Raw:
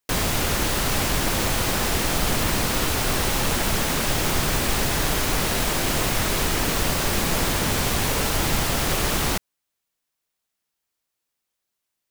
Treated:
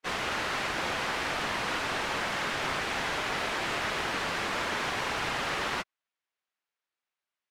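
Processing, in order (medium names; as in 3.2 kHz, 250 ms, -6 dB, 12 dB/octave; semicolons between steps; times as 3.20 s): low-pass 1.8 kHz 12 dB/octave; tilt EQ +4.5 dB/octave; plain phase-vocoder stretch 0.62×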